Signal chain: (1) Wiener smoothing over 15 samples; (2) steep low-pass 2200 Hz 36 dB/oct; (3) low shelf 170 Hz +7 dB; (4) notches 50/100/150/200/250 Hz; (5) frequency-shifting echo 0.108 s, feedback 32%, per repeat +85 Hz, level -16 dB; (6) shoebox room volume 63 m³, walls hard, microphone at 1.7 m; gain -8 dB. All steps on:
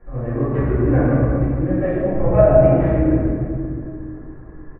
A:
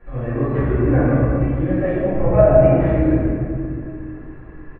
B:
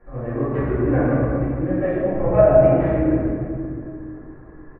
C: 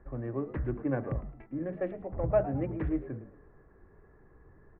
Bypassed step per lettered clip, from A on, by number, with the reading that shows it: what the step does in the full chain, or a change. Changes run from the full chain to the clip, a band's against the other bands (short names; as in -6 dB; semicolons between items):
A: 1, 2 kHz band +2.0 dB; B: 3, 125 Hz band -4.0 dB; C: 6, echo-to-direct 14.5 dB to -15.5 dB